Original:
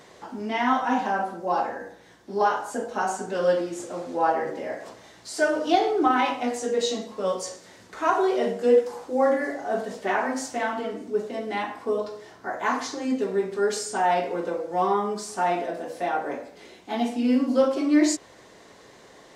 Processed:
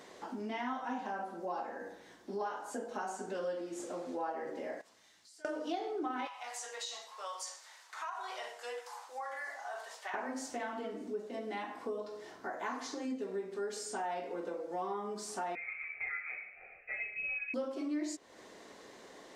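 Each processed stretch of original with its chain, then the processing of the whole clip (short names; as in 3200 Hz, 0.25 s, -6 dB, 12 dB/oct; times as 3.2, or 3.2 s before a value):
4.81–5.45 passive tone stack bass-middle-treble 5-5-5 + compressor 4:1, threshold -55 dBFS
6.27–10.14 Chebyshev high-pass 890 Hz, order 3 + compressor 2.5:1, threshold -31 dBFS
15.55–17.54 HPF 120 Hz + inverted band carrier 2800 Hz + fixed phaser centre 1000 Hz, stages 6
whole clip: resonant low shelf 180 Hz -6 dB, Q 1.5; compressor 3:1, threshold -35 dBFS; gain -4 dB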